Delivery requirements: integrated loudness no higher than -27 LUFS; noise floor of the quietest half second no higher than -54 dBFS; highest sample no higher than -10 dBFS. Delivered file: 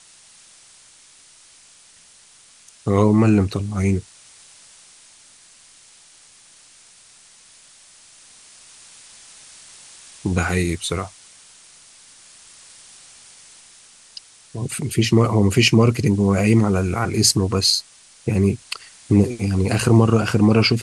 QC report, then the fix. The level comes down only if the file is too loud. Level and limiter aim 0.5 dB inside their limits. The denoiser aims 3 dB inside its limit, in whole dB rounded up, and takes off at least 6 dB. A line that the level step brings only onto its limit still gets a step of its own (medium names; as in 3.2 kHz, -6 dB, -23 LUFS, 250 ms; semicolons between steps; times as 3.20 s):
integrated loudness -18.5 LUFS: fail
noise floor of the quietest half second -50 dBFS: fail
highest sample -3.0 dBFS: fail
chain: trim -9 dB